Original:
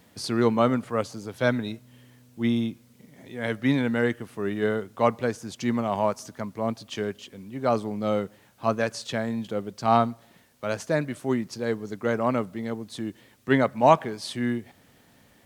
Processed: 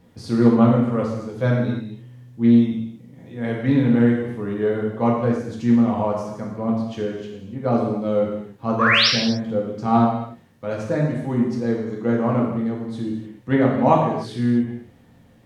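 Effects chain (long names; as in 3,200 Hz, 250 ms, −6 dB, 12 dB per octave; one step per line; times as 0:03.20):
spectral tilt −2.5 dB per octave
sound drawn into the spectrogram rise, 0:08.79–0:09.08, 1,000–5,900 Hz −16 dBFS
reverb whose tail is shaped and stops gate 330 ms falling, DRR −3 dB
highs frequency-modulated by the lows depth 0.11 ms
level −4 dB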